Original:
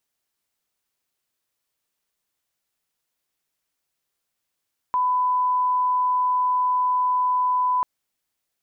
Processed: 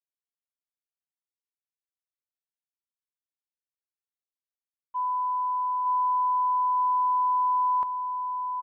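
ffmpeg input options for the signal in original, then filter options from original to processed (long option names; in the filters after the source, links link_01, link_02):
-f lavfi -i "sine=frequency=1000:duration=2.89:sample_rate=44100,volume=0.06dB"
-filter_complex "[0:a]agate=range=-33dB:threshold=-16dB:ratio=3:detection=peak,asplit=2[link_01][link_02];[link_02]adelay=910,lowpass=frequency=1100:poles=1,volume=-3.5dB,asplit=2[link_03][link_04];[link_04]adelay=910,lowpass=frequency=1100:poles=1,volume=0.52,asplit=2[link_05][link_06];[link_06]adelay=910,lowpass=frequency=1100:poles=1,volume=0.52,asplit=2[link_07][link_08];[link_08]adelay=910,lowpass=frequency=1100:poles=1,volume=0.52,asplit=2[link_09][link_10];[link_10]adelay=910,lowpass=frequency=1100:poles=1,volume=0.52,asplit=2[link_11][link_12];[link_12]adelay=910,lowpass=frequency=1100:poles=1,volume=0.52,asplit=2[link_13][link_14];[link_14]adelay=910,lowpass=frequency=1100:poles=1,volume=0.52[link_15];[link_03][link_05][link_07][link_09][link_11][link_13][link_15]amix=inputs=7:normalize=0[link_16];[link_01][link_16]amix=inputs=2:normalize=0"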